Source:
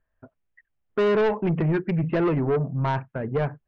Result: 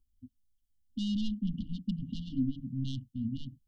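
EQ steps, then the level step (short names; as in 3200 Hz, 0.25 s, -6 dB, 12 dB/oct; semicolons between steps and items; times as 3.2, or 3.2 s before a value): brick-wall FIR band-stop 270–2800 Hz; fixed phaser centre 570 Hz, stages 6; +4.5 dB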